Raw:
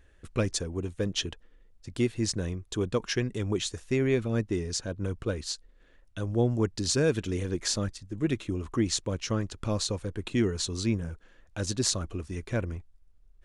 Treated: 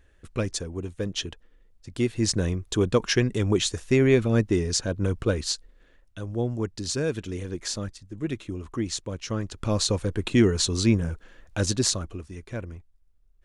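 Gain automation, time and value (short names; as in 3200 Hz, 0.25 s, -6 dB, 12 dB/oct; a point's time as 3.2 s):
1.9 s 0 dB
2.38 s +6.5 dB
5.49 s +6.5 dB
6.2 s -2 dB
9.19 s -2 dB
9.95 s +7 dB
11.62 s +7 dB
12.34 s -4 dB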